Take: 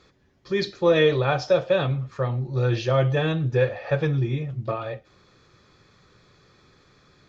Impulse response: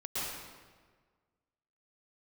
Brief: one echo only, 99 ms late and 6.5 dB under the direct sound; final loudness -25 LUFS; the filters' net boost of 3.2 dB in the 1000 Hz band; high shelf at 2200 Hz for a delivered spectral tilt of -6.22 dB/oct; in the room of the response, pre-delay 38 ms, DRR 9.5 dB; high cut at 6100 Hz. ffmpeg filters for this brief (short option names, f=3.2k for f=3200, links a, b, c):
-filter_complex "[0:a]lowpass=6.1k,equalizer=f=1k:t=o:g=5.5,highshelf=f=2.2k:g=-4.5,aecho=1:1:99:0.473,asplit=2[a][b];[1:a]atrim=start_sample=2205,adelay=38[c];[b][c]afir=irnorm=-1:irlink=0,volume=-14.5dB[d];[a][d]amix=inputs=2:normalize=0,volume=-3.5dB"